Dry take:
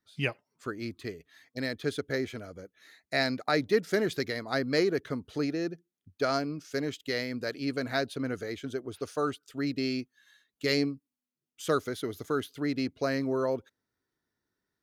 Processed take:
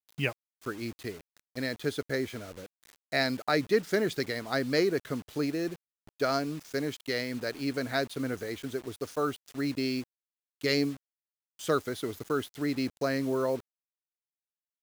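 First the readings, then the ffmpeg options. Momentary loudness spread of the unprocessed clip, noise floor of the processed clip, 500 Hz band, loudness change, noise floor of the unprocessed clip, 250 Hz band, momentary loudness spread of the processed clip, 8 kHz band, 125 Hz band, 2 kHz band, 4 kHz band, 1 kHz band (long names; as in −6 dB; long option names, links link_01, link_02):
12 LU, below −85 dBFS, 0.0 dB, 0.0 dB, below −85 dBFS, 0.0 dB, 12 LU, +2.0 dB, 0.0 dB, 0.0 dB, 0.0 dB, 0.0 dB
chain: -af "acrusher=bits=7:mix=0:aa=0.000001"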